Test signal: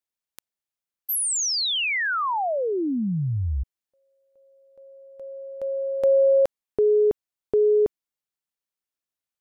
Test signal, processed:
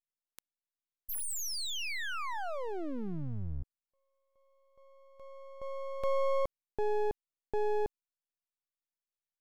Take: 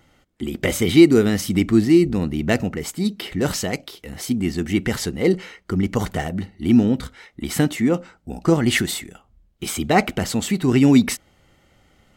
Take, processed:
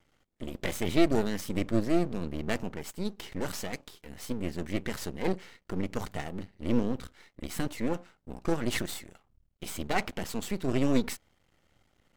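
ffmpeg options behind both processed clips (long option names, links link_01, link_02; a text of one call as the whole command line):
ffmpeg -i in.wav -af "aeval=exprs='max(val(0),0)':channel_layout=same,volume=-8dB" out.wav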